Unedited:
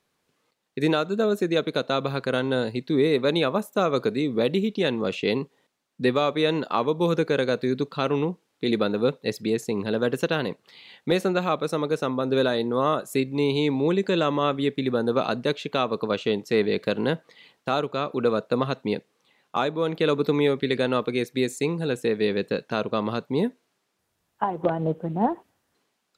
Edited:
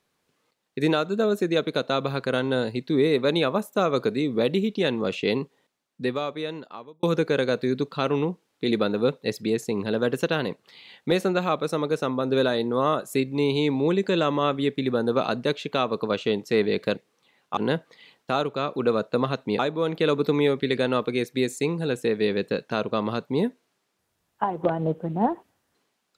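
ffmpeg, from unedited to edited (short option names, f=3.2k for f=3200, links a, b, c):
-filter_complex "[0:a]asplit=5[a][b][c][d][e];[a]atrim=end=7.03,asetpts=PTS-STARTPTS,afade=t=out:st=5.42:d=1.61[f];[b]atrim=start=7.03:end=16.952,asetpts=PTS-STARTPTS,afade=t=in:d=0.004:c=hsin[g];[c]atrim=start=18.968:end=19.592[h];[d]atrim=start=16.948:end=18.972[i];[e]atrim=start=19.588[j];[f][g]concat=n=2:v=0:a=1[k];[k][h]acrossfade=d=0.004:c1=hsin:c2=hsin[l];[l][i]acrossfade=d=0.004:c1=hsin:c2=hsin[m];[m][j]acrossfade=d=0.004:c1=hsin:c2=hsin"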